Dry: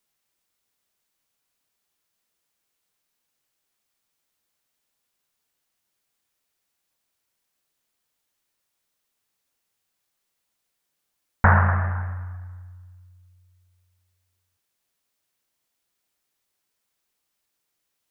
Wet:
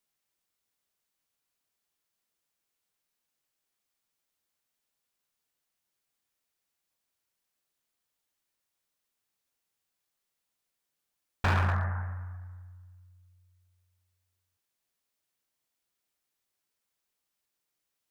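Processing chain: hard clip -16.5 dBFS, distortion -9 dB; gain -6 dB

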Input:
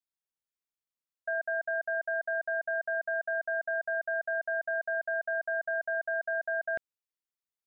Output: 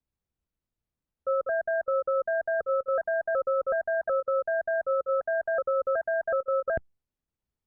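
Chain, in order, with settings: trilling pitch shifter -3.5 st, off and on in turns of 0.372 s; tilt -6 dB/oct; gain +3 dB; Opus 64 kbps 48000 Hz

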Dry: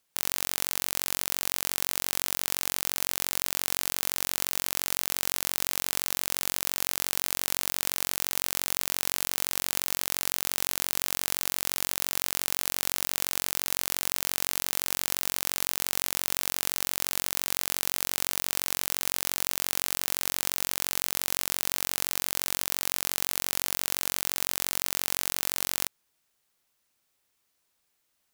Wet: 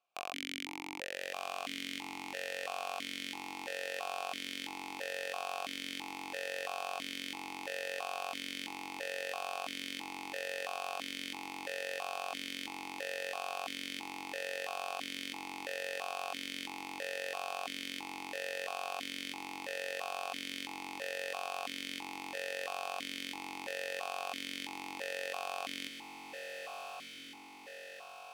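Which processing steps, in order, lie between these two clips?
on a send: diffused feedback echo 1.22 s, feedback 62%, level -5.5 dB; on the sum: vowel sequencer 3 Hz; gain +8 dB

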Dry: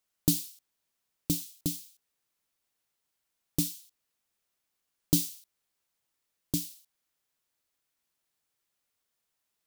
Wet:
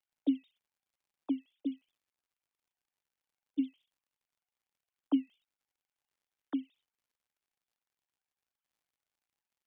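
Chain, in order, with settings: sine-wave speech; crackle 110/s -67 dBFS; gain -3.5 dB

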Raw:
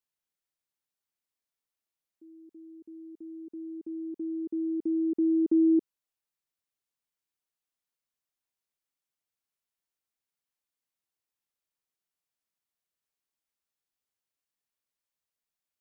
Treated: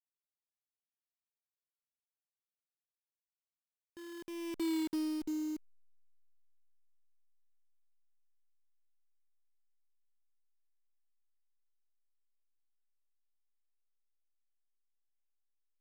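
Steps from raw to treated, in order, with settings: level-crossing sampler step -30.5 dBFS; Doppler pass-by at 4.7, 19 m/s, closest 4.7 m; gain -5.5 dB

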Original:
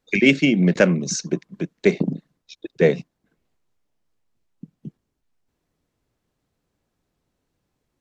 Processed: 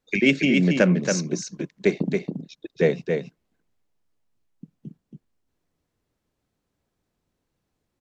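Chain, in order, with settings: echo 0.277 s -5 dB; gain -3.5 dB

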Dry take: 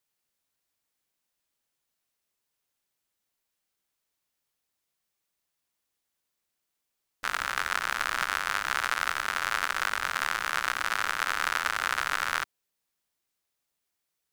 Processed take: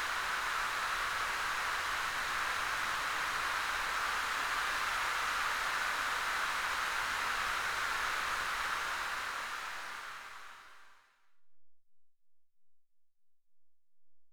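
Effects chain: backlash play -28.5 dBFS; Paulstretch 4.5×, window 1.00 s, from 10.39; gain -5 dB

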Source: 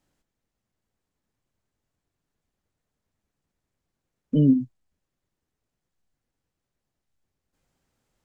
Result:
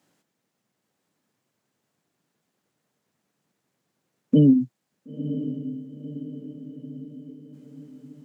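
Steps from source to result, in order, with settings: HPF 140 Hz 24 dB/oct; compressor 5:1, threshold -20 dBFS, peak gain reduction 6.5 dB; on a send: diffused feedback echo 0.98 s, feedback 53%, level -11 dB; on the sum: gain +7.5 dB

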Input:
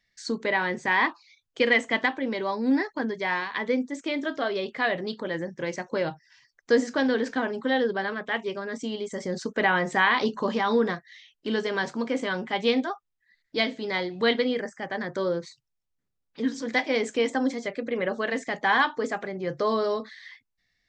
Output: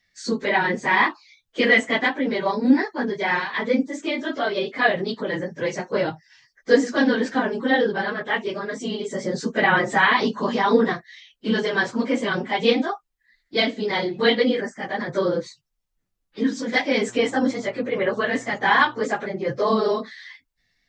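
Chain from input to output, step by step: phase scrambler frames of 50 ms; 17.07–19.03 buzz 120 Hz, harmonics 12, -52 dBFS -4 dB/oct; gain +4.5 dB

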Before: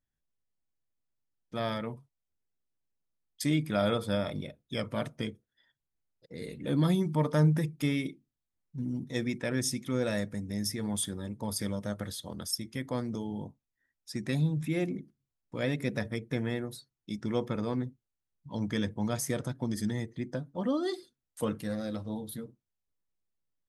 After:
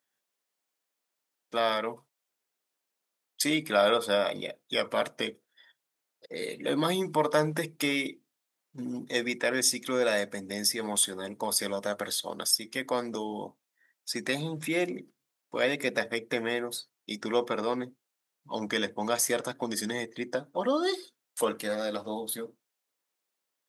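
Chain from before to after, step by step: HPF 460 Hz 12 dB/oct; in parallel at -2.5 dB: compressor, threshold -41 dBFS, peak gain reduction 14.5 dB; on the sum: gain +6 dB

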